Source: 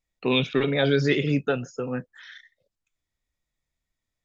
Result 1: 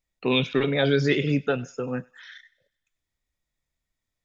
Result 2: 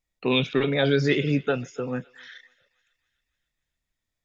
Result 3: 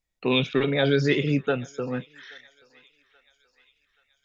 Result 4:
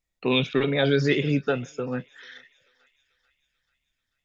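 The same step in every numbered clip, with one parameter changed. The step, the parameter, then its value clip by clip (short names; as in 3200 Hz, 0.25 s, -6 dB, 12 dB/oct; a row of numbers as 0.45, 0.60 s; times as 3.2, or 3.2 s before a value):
thinning echo, time: 98, 277, 829, 439 ms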